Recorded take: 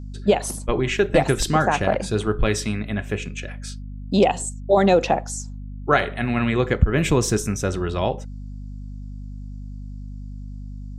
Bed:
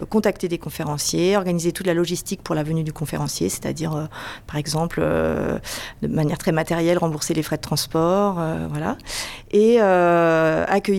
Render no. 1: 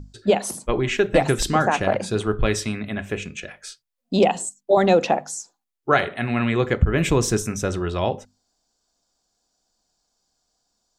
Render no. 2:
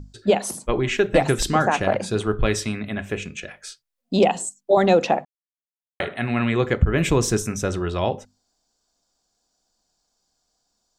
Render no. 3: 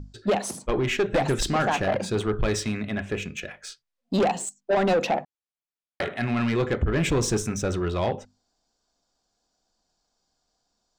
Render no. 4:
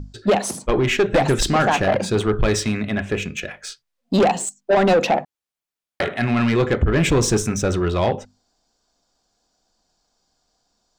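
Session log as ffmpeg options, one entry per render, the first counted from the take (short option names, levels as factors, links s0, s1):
-af "bandreject=f=50:t=h:w=6,bandreject=f=100:t=h:w=6,bandreject=f=150:t=h:w=6,bandreject=f=200:t=h:w=6,bandreject=f=250:t=h:w=6"
-filter_complex "[0:a]asplit=3[s0][s1][s2];[s0]atrim=end=5.25,asetpts=PTS-STARTPTS,afade=t=out:st=5.246:d=0.004:c=hsin[s3];[s1]atrim=start=5.25:end=6,asetpts=PTS-STARTPTS,volume=0[s4];[s2]atrim=start=6,asetpts=PTS-STARTPTS,afade=t=in:d=0.004:c=hsin[s5];[s3][s4][s5]concat=n=3:v=0:a=1"
-af "adynamicsmooth=sensitivity=7.5:basefreq=7000,asoftclip=type=tanh:threshold=0.141"
-af "volume=2"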